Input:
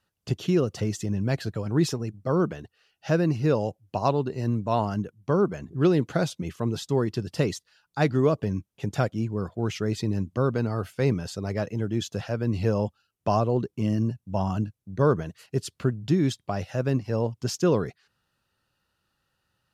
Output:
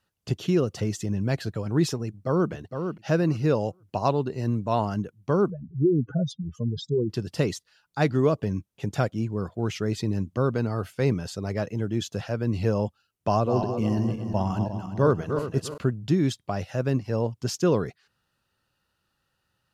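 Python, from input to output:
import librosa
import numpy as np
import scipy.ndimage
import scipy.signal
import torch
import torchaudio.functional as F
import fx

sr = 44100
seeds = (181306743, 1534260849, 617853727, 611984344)

y = fx.echo_throw(x, sr, start_s=2.06, length_s=0.45, ms=460, feedback_pct=15, wet_db=-7.0)
y = fx.spec_expand(y, sr, power=3.3, at=(5.5, 7.1))
y = fx.reverse_delay_fb(y, sr, ms=176, feedback_pct=56, wet_db=-6.5, at=(13.28, 15.78))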